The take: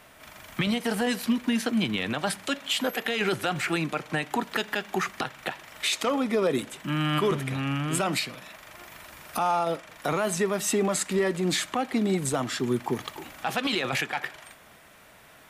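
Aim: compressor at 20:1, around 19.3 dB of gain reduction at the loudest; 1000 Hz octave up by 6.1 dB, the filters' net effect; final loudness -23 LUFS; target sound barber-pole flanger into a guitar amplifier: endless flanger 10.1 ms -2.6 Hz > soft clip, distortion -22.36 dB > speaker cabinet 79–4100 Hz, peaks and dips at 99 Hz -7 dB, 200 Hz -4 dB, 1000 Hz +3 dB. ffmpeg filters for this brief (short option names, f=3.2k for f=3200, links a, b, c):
-filter_complex "[0:a]equalizer=f=1k:t=o:g=6.5,acompressor=threshold=-36dB:ratio=20,asplit=2[a][b];[b]adelay=10.1,afreqshift=-2.6[c];[a][c]amix=inputs=2:normalize=1,asoftclip=threshold=-32dB,highpass=79,equalizer=f=99:t=q:w=4:g=-7,equalizer=f=200:t=q:w=4:g=-4,equalizer=f=1k:t=q:w=4:g=3,lowpass=f=4.1k:w=0.5412,lowpass=f=4.1k:w=1.3066,volume=22dB"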